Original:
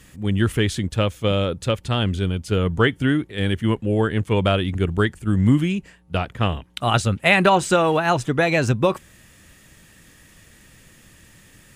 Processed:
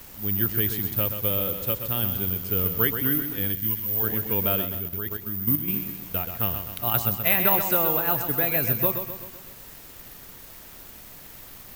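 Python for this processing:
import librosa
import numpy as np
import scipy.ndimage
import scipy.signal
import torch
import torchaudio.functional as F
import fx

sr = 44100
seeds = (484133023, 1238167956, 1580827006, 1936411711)

y = scipy.signal.sosfilt(scipy.signal.butter(2, 7700.0, 'lowpass', fs=sr, output='sos'), x)
y = fx.dmg_noise_colour(y, sr, seeds[0], colour='pink', level_db=-40.0)
y = fx.echo_feedback(y, sr, ms=128, feedback_pct=52, wet_db=-8.0)
y = (np.kron(y[::3], np.eye(3)[0]) * 3)[:len(y)]
y = fx.peak_eq(y, sr, hz=fx.line((3.51, 1000.0), (4.02, 240.0)), db=-13.0, octaves=2.3, at=(3.51, 4.02), fade=0.02)
y = fx.level_steps(y, sr, step_db=10, at=(4.65, 5.68))
y = F.gain(torch.from_numpy(y), -10.0).numpy()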